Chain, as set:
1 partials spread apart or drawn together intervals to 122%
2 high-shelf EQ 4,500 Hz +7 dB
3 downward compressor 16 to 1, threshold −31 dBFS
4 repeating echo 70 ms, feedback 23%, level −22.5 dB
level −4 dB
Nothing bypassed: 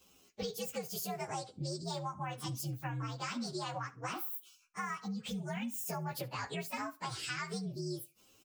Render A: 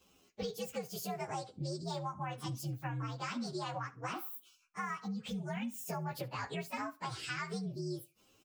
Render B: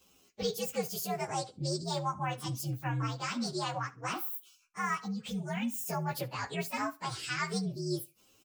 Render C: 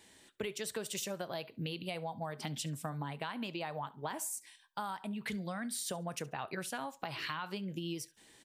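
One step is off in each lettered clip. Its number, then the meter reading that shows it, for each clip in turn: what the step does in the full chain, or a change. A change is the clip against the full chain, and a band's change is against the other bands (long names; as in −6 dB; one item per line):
2, 8 kHz band −4.5 dB
3, average gain reduction 3.5 dB
1, 8 kHz band +3.0 dB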